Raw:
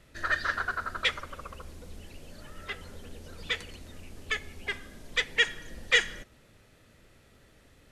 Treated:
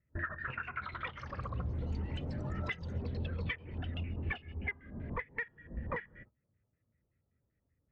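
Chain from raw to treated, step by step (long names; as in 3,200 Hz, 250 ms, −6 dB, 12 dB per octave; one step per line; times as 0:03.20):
stylus tracing distortion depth 0.22 ms
high-pass filter 68 Hz 12 dB per octave
low-shelf EQ 250 Hz +10.5 dB
noise gate −47 dBFS, range −18 dB
auto-filter low-pass square 5.2 Hz 980–2,100 Hz
downward compressor 20 to 1, threshold −41 dBFS, peak gain reduction 27 dB
delay with pitch and tempo change per echo 375 ms, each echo +7 semitones, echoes 3, each echo −6 dB
every bin expanded away from the loudest bin 1.5 to 1
level +3.5 dB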